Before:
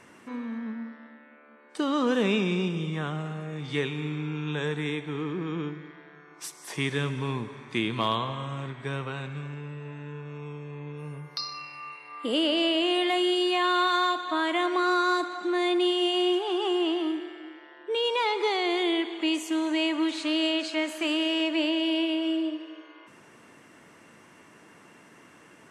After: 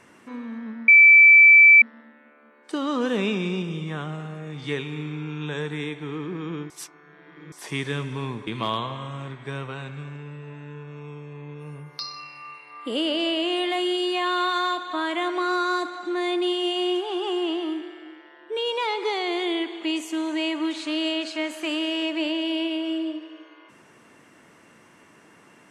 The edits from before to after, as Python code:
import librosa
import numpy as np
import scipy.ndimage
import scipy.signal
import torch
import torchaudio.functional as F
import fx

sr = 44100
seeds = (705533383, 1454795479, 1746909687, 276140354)

y = fx.edit(x, sr, fx.insert_tone(at_s=0.88, length_s=0.94, hz=2320.0, db=-8.0),
    fx.reverse_span(start_s=5.76, length_s=0.82),
    fx.cut(start_s=7.53, length_s=0.32), tone=tone)